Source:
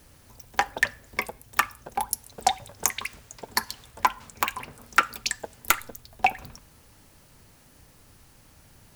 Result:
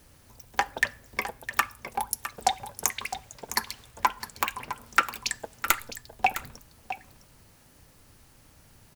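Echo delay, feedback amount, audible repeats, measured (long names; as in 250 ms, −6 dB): 659 ms, repeats not evenly spaced, 1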